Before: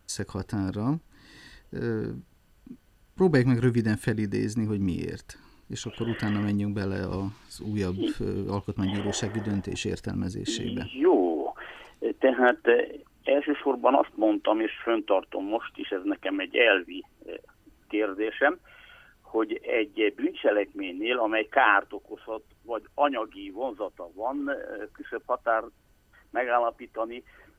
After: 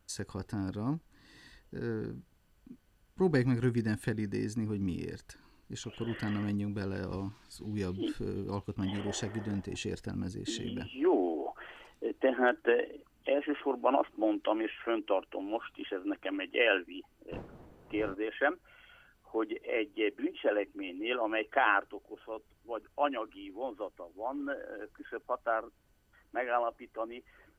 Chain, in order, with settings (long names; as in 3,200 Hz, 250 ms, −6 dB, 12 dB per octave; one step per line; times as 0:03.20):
0:17.31–0:18.14: wind on the microphone 440 Hz −30 dBFS
level −6.5 dB